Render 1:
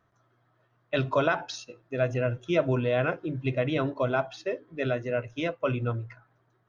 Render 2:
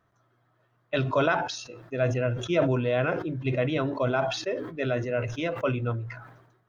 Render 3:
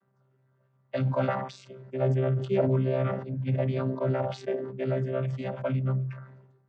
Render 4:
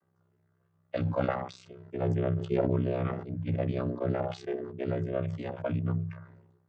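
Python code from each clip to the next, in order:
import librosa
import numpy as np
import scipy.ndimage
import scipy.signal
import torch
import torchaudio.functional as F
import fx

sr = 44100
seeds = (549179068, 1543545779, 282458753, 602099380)

y1 = fx.sustainer(x, sr, db_per_s=59.0)
y2 = fx.chord_vocoder(y1, sr, chord='bare fifth', root=48)
y3 = y2 * np.sin(2.0 * np.pi * 32.0 * np.arange(len(y2)) / sr)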